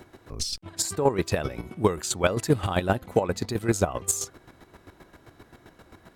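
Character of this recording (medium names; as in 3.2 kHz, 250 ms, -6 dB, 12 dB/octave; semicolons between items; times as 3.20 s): chopped level 7.6 Hz, depth 65%, duty 25%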